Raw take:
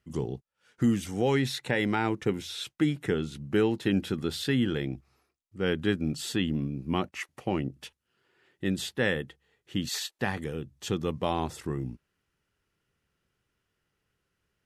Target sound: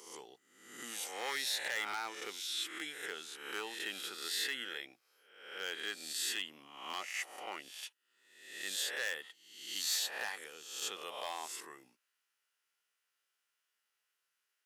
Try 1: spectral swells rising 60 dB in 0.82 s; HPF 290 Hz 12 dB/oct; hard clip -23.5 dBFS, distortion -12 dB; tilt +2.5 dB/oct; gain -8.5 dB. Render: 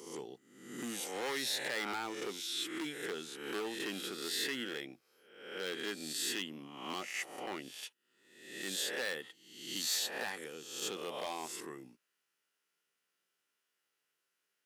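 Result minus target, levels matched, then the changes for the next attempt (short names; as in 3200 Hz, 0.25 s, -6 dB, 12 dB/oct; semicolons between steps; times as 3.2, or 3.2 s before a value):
250 Hz band +11.0 dB
change: HPF 710 Hz 12 dB/oct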